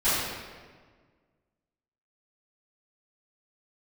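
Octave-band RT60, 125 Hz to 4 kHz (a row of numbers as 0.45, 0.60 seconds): 2.0, 1.9, 1.7, 1.5, 1.4, 1.1 seconds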